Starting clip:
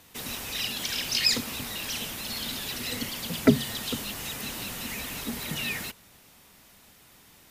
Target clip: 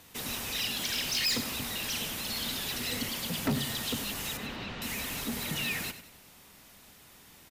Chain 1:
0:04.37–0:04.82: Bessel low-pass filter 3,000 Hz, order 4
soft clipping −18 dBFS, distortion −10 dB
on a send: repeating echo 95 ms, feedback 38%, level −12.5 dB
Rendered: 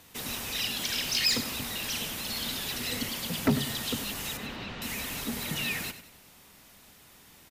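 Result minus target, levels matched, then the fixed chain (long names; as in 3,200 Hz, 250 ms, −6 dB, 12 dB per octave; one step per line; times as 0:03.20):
soft clipping: distortion −4 dB
0:04.37–0:04.82: Bessel low-pass filter 3,000 Hz, order 4
soft clipping −24.5 dBFS, distortion −5 dB
on a send: repeating echo 95 ms, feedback 38%, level −12.5 dB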